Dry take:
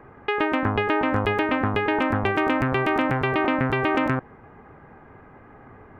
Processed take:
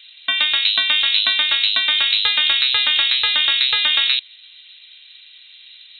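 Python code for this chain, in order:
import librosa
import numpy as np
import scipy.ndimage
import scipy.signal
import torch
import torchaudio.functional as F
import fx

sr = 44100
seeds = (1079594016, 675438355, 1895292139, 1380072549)

p1 = np.sign(x) * np.maximum(np.abs(x) - 10.0 ** (-38.0 / 20.0), 0.0)
p2 = x + F.gain(torch.from_numpy(p1), -11.5).numpy()
p3 = fx.freq_invert(p2, sr, carrier_hz=4000)
y = F.gain(torch.from_numpy(p3), 3.0).numpy()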